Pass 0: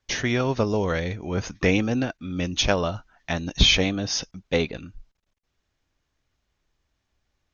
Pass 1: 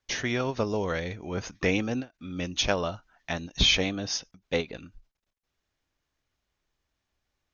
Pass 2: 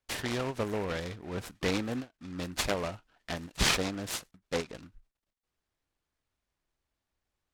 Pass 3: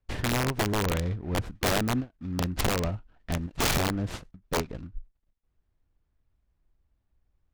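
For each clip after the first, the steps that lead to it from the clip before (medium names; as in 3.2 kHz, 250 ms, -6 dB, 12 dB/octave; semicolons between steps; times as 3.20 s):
bass shelf 220 Hz -4.5 dB; endings held to a fixed fall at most 320 dB/s; trim -3.5 dB
delay time shaken by noise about 1.3 kHz, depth 0.073 ms; trim -4.5 dB
RIAA curve playback; integer overflow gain 19 dB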